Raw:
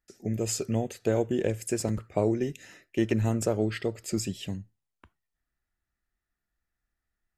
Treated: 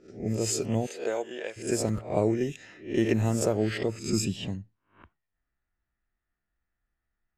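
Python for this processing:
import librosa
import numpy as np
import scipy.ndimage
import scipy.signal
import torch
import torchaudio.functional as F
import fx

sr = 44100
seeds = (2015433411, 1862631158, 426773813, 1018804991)

y = fx.spec_swells(x, sr, rise_s=0.39)
y = fx.highpass(y, sr, hz=fx.line((0.86, 390.0), (1.56, 910.0)), slope=12, at=(0.86, 1.56), fade=0.02)
y = fx.env_lowpass(y, sr, base_hz=2600.0, full_db=-22.5)
y = fx.comb(y, sr, ms=0.8, depth=0.46, at=(3.89, 4.36))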